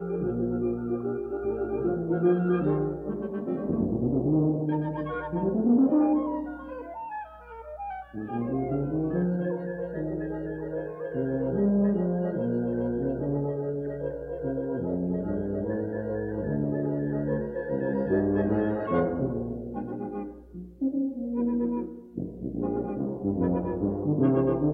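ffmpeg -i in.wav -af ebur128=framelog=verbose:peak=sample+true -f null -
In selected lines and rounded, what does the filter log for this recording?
Integrated loudness:
  I:         -28.5 LUFS
  Threshold: -38.7 LUFS
Loudness range:
  LRA:         4.9 LU
  Threshold: -48.8 LUFS
  LRA low:   -31.3 LUFS
  LRA high:  -26.5 LUFS
Sample peak:
  Peak:      -12.3 dBFS
True peak:
  Peak:      -12.3 dBFS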